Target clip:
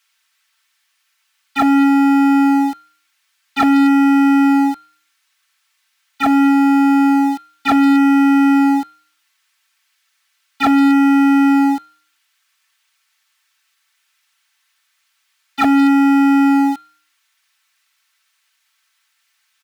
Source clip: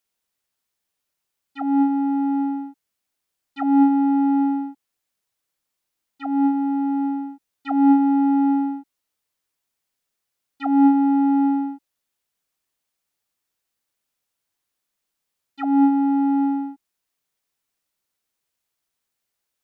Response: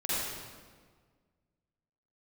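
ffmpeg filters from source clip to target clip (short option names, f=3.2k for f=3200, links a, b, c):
-filter_complex "[0:a]asplit=2[a][b];[b]highpass=f=720:p=1,volume=25dB,asoftclip=type=tanh:threshold=-6.5dB[c];[a][c]amix=inputs=2:normalize=0,lowpass=f=1.6k:p=1,volume=-6dB,aecho=1:1:4.5:0.66,acrossover=split=1200[d][e];[d]aeval=exprs='val(0)*gte(abs(val(0)),0.0251)':c=same[f];[f][e]amix=inputs=2:normalize=0,bandreject=f=154:t=h:w=4,bandreject=f=308:t=h:w=4,bandreject=f=462:t=h:w=4,bandreject=f=616:t=h:w=4,bandreject=f=770:t=h:w=4,bandreject=f=924:t=h:w=4,bandreject=f=1.078k:t=h:w=4,bandreject=f=1.232k:t=h:w=4,bandreject=f=1.386k:t=h:w=4,bandreject=f=1.54k:t=h:w=4,bandreject=f=1.694k:t=h:w=4,bandreject=f=1.848k:t=h:w=4,bandreject=f=2.002k:t=h:w=4,bandreject=f=2.156k:t=h:w=4,bandreject=f=2.31k:t=h:w=4,bandreject=f=2.464k:t=h:w=4,bandreject=f=2.618k:t=h:w=4,bandreject=f=2.772k:t=h:w=4,bandreject=f=2.926k:t=h:w=4,bandreject=f=3.08k:t=h:w=4,bandreject=f=3.234k:t=h:w=4,bandreject=f=3.388k:t=h:w=4,bandreject=f=3.542k:t=h:w=4,bandreject=f=3.696k:t=h:w=4,bandreject=f=3.85k:t=h:w=4,bandreject=f=4.004k:t=h:w=4,bandreject=f=4.158k:t=h:w=4,asoftclip=type=tanh:threshold=-14.5dB,volume=6.5dB"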